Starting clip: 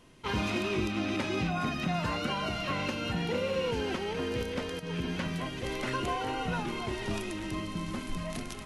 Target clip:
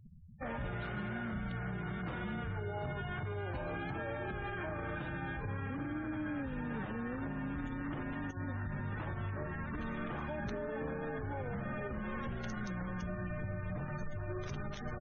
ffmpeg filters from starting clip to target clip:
ffmpeg -i in.wav -af "afftfilt=real='re*gte(hypot(re,im),0.00631)':imag='im*gte(hypot(re,im),0.00631)':win_size=1024:overlap=0.75,acompressor=threshold=-34dB:ratio=12,alimiter=level_in=11dB:limit=-24dB:level=0:latency=1:release=41,volume=-11dB,acompressor=mode=upward:threshold=-55dB:ratio=2.5,asetrate=25442,aresample=44100,volume=4dB" out.wav

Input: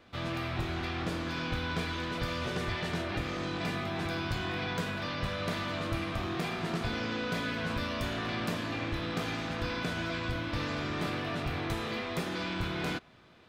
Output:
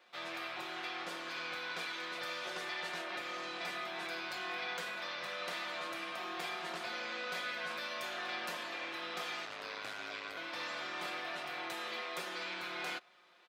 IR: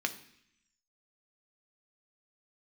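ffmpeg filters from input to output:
-filter_complex "[0:a]highpass=630,aecho=1:1:5.6:0.62,asettb=1/sr,asplit=3[link_01][link_02][link_03];[link_01]atrim=end=9.454[link_04];[link_02]atrim=start=9.45:end=10.37,asetpts=PTS-STARTPTS,afade=type=in:duration=0.004:curve=qsin,afade=type=out:start_time=0.916:duration=0.004:curve=qsin,aeval=exprs='val(0)*sin(2*PI*51*n/s)':channel_layout=same[link_05];[link_03]atrim=start=10.366[link_06];[link_04][link_05]acrossfade=duration=0.004:curve1=hsin:curve2=qsin[link_07];[link_07][link_06]acrossfade=duration=0.004:curve1=qsin:curve2=hsin,volume=-4dB"

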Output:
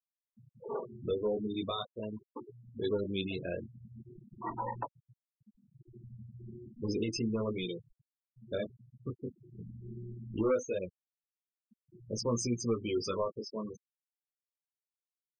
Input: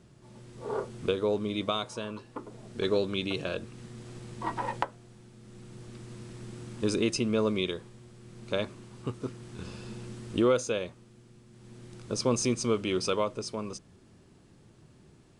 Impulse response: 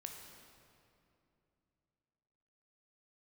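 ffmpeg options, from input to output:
-af "asoftclip=type=tanh:threshold=-21.5dB,flanger=delay=17:depth=6.3:speed=0.4,afftfilt=real='re*gte(hypot(re,im),0.0251)':imag='im*gte(hypot(re,im),0.0251)':win_size=1024:overlap=0.75"

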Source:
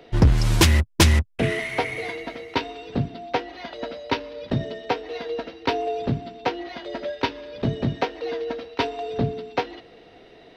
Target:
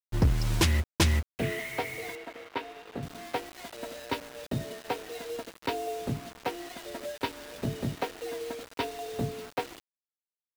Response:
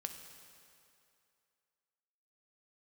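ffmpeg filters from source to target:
-filter_complex "[0:a]asettb=1/sr,asplit=3[link_01][link_02][link_03];[link_01]atrim=end=4.204[link_04];[link_02]atrim=start=4.2:end=4.85,asetpts=PTS-STARTPTS,afade=type=in:duration=0.004:curve=qsin,afade=type=out:start_time=0.646:duration=0.004:curve=qsin,agate=range=-33dB:threshold=-35dB:ratio=3:detection=peak[link_05];[link_03]atrim=start=4.846[link_06];[link_04][link_05]acrossfade=duration=0.004:curve1=hsin:curve2=qsin[link_07];[link_07][link_06]acrossfade=duration=0.004:curve1=qsin:curve2=hsin,acrusher=bits=5:mix=0:aa=0.000001,asettb=1/sr,asplit=3[link_08][link_09][link_10];[link_08]atrim=end=2.154[link_11];[link_09]atrim=start=2.15:end=3.03,asetpts=PTS-STARTPTS,afade=type=in:duration=0.004:curve=qsin,afade=type=out:start_time=0.876:duration=0.004:curve=qsin,bass=frequency=250:gain=-10,treble=frequency=4000:gain=-14[link_12];[link_10]atrim=start=3.026[link_13];[link_11][link_12]acrossfade=duration=0.004:curve1=hsin:curve2=qsin[link_14];[link_14][link_13]acrossfade=duration=0.004:curve1=qsin:curve2=hsin,volume=-8dB"

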